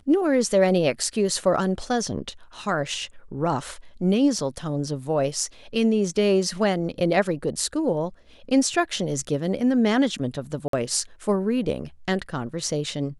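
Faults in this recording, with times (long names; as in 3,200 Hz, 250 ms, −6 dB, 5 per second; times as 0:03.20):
0:10.68–0:10.73: drop-out 53 ms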